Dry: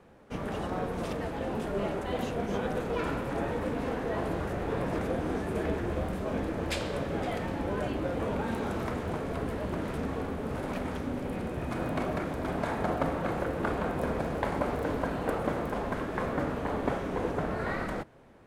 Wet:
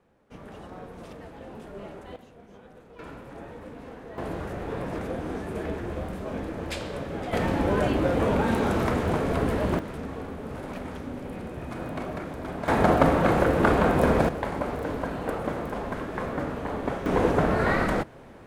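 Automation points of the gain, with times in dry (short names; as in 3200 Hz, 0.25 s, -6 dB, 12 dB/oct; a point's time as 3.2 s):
-9 dB
from 2.16 s -18.5 dB
from 2.99 s -10 dB
from 4.18 s -1 dB
from 7.33 s +8 dB
from 9.79 s -2 dB
from 12.68 s +10 dB
from 14.29 s +0.5 dB
from 17.06 s +9 dB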